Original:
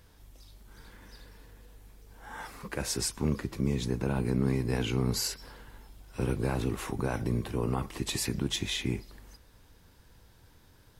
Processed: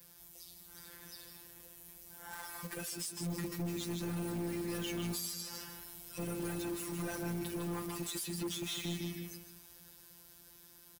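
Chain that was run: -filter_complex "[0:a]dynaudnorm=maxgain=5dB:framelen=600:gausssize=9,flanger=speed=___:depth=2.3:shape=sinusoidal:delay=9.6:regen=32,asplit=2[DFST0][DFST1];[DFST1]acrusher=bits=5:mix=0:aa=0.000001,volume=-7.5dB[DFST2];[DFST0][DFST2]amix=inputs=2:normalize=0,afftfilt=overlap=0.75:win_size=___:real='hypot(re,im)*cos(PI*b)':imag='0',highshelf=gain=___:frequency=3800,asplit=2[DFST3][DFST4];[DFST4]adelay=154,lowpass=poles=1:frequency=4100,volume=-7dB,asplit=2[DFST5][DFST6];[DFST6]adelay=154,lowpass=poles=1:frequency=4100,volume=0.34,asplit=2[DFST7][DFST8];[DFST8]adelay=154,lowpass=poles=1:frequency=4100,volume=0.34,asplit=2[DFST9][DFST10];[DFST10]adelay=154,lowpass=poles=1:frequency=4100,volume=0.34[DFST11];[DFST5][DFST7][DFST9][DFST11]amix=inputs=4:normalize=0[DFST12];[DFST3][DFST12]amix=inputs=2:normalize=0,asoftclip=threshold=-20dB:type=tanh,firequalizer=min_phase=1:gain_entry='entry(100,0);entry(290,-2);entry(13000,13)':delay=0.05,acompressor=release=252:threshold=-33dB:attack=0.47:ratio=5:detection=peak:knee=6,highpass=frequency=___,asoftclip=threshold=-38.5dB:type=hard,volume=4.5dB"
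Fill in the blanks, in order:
1.7, 1024, 4.5, 43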